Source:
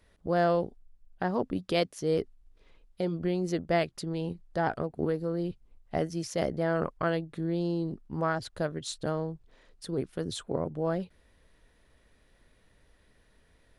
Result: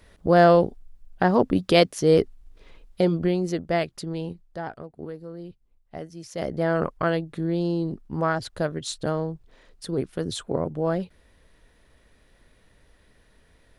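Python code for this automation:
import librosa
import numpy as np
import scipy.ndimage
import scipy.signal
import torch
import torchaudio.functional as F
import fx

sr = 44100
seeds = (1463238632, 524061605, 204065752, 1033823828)

y = fx.gain(x, sr, db=fx.line((3.03, 10.0), (3.59, 2.5), (4.19, 2.5), (4.76, -7.0), (6.18, -7.0), (6.61, 5.0)))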